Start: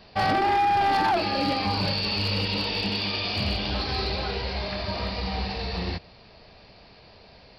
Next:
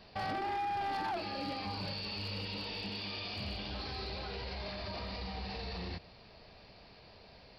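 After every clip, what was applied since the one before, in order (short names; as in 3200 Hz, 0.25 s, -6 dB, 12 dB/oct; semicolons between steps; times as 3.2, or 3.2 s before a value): limiter -27 dBFS, peak gain reduction 8.5 dB; gain -5.5 dB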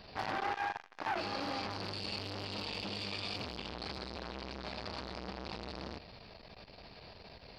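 core saturation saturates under 900 Hz; gain +5.5 dB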